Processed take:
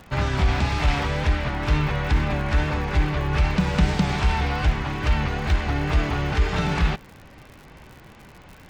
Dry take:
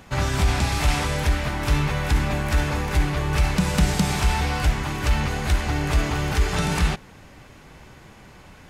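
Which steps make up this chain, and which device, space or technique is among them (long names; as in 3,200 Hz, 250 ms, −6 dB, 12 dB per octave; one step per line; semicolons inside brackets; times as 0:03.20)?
lo-fi chain (low-pass filter 4,000 Hz 12 dB per octave; tape wow and flutter; surface crackle 89 per second −36 dBFS)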